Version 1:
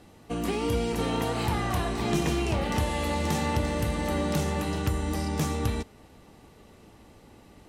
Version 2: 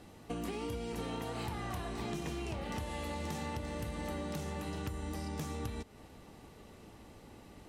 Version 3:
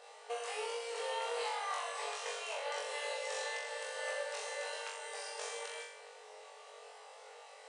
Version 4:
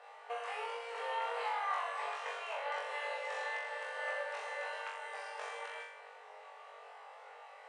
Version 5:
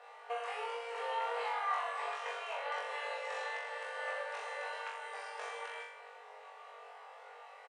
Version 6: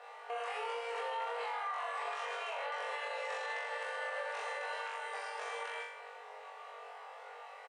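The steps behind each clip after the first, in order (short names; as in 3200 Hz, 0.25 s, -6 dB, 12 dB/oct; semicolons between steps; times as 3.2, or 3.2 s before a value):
compressor 6:1, threshold -35 dBFS, peak gain reduction 13.5 dB; gain -1.5 dB
flutter echo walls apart 3.6 m, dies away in 0.72 s; FFT band-pass 420–10000 Hz; gain +1 dB
three-band isolator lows -21 dB, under 580 Hz, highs -19 dB, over 2500 Hz; gain +4.5 dB
comb 4.2 ms, depth 31%
limiter -33.5 dBFS, peak gain reduction 10 dB; gain +3 dB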